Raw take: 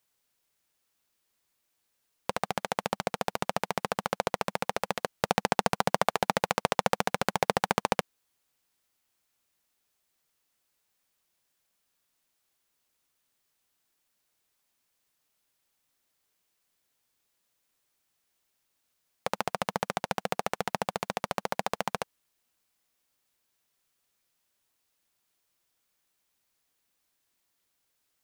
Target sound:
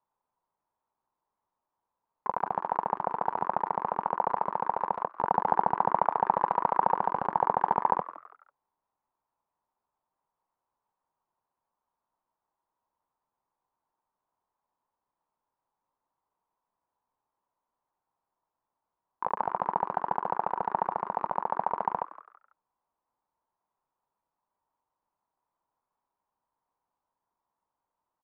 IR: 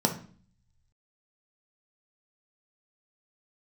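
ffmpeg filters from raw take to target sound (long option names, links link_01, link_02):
-filter_complex "[0:a]asplit=2[link_01][link_02];[link_02]asetrate=88200,aresample=44100,atempo=0.5,volume=-3dB[link_03];[link_01][link_03]amix=inputs=2:normalize=0,asoftclip=type=tanh:threshold=-7.5dB,lowpass=frequency=950:width_type=q:width=5.7,asplit=4[link_04][link_05][link_06][link_07];[link_05]adelay=165,afreqshift=130,volume=-16.5dB[link_08];[link_06]adelay=330,afreqshift=260,volume=-25.9dB[link_09];[link_07]adelay=495,afreqshift=390,volume=-35.2dB[link_10];[link_04][link_08][link_09][link_10]amix=inputs=4:normalize=0,volume=-6dB"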